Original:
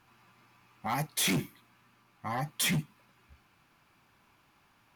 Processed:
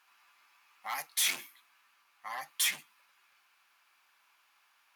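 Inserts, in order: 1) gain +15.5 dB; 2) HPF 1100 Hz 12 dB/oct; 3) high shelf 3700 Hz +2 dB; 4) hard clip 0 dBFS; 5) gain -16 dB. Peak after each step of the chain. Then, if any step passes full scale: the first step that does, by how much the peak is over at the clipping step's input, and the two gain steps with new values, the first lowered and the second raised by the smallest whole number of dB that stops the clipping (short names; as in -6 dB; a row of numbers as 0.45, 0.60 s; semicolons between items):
-7.0, -5.0, -3.5, -3.5, -19.5 dBFS; no overload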